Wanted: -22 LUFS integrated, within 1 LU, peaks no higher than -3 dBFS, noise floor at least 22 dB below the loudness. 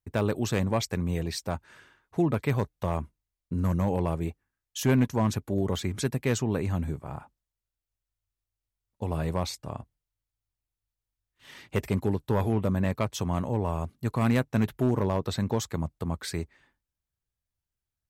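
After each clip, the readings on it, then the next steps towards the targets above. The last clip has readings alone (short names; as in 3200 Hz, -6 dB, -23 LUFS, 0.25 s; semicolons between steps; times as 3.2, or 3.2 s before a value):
clipped 0.3%; flat tops at -16.0 dBFS; loudness -29.0 LUFS; peak -16.0 dBFS; loudness target -22.0 LUFS
-> clip repair -16 dBFS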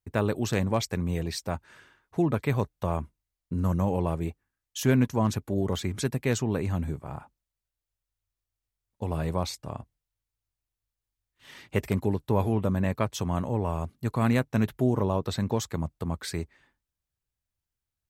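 clipped 0.0%; loudness -29.0 LUFS; peak -9.0 dBFS; loudness target -22.0 LUFS
-> gain +7 dB; limiter -3 dBFS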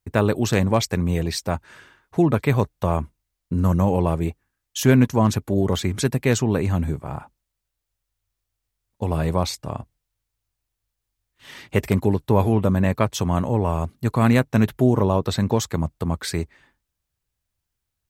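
loudness -22.0 LUFS; peak -3.0 dBFS; noise floor -81 dBFS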